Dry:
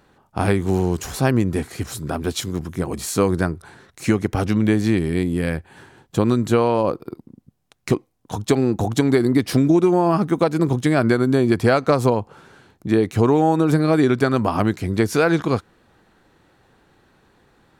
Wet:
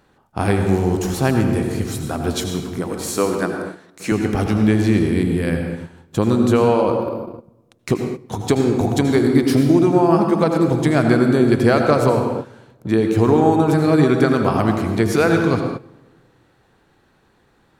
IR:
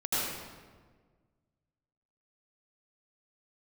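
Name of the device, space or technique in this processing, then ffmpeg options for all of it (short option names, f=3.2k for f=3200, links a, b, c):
keyed gated reverb: -filter_complex "[0:a]asettb=1/sr,asplit=3[a][b][c];[a]atrim=end=2.784[d];[b]atrim=start=2.78:end=4.12,asetpts=PTS-STARTPTS,afade=t=in:d=0.004:c=qsin,afade=t=out:st=1.336:d=0.004:c=qsin,highpass=250[e];[c]atrim=start=4.116[f];[d][e]acrossfade=d=0.004:c1=hsin:c2=qsin[g];[g][f]acrossfade=d=0.004:c1=qsin:c2=hsin,asplit=3[h][i][j];[1:a]atrim=start_sample=2205[k];[i][k]afir=irnorm=-1:irlink=0[l];[j]apad=whole_len=784856[m];[l][m]sidechaingate=range=-15dB:threshold=-43dB:ratio=16:detection=peak,volume=-11dB[n];[h][n]amix=inputs=2:normalize=0,volume=-1.5dB"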